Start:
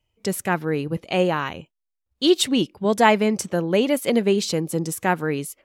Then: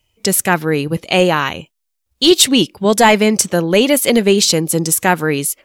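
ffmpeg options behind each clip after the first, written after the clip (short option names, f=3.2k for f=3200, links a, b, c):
-af "highshelf=f=2.7k:g=9.5,apsyclip=9dB,volume=-2dB"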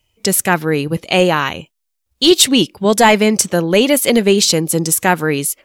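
-af anull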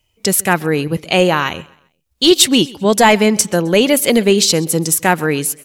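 -af "aecho=1:1:131|262|393:0.075|0.0277|0.0103"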